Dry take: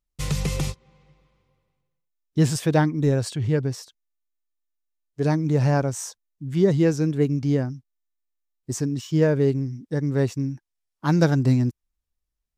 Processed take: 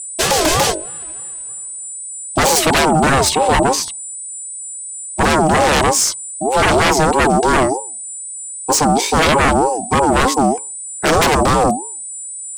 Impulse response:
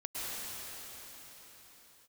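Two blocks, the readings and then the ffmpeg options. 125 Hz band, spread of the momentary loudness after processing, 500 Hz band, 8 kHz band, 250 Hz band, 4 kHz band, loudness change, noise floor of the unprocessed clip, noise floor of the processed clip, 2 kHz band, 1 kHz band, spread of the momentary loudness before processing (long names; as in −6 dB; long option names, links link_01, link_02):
−1.5 dB, 13 LU, +9.0 dB, +20.0 dB, +4.5 dB, +19.0 dB, +9.0 dB, −82 dBFS, −29 dBFS, +17.5 dB, +21.0 dB, 12 LU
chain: -af "highpass=frequency=230:poles=1,aeval=exprs='val(0)+0.00501*sin(2*PI*8400*n/s)':channel_layout=same,bandreject=frequency=50:width_type=h:width=6,bandreject=frequency=100:width_type=h:width=6,bandreject=frequency=150:width_type=h:width=6,bandreject=frequency=200:width_type=h:width=6,bandreject=frequency=250:width_type=h:width=6,bandreject=frequency=300:width_type=h:width=6,bandreject=frequency=350:width_type=h:width=6,bandreject=frequency=400:width_type=h:width=6,aeval=exprs='0.473*sin(PI/2*8.91*val(0)/0.473)':channel_layout=same,aeval=exprs='val(0)*sin(2*PI*580*n/s+580*0.2/3.2*sin(2*PI*3.2*n/s))':channel_layout=same"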